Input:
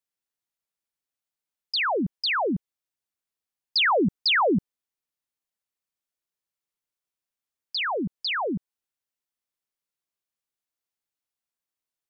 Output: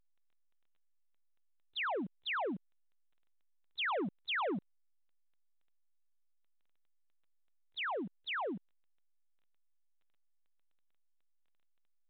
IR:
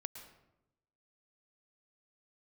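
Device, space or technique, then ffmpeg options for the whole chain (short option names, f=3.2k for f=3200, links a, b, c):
telephone: -af "highpass=280,lowpass=3.1k,asoftclip=type=tanh:threshold=-25.5dB,volume=-7dB" -ar 8000 -c:a pcm_alaw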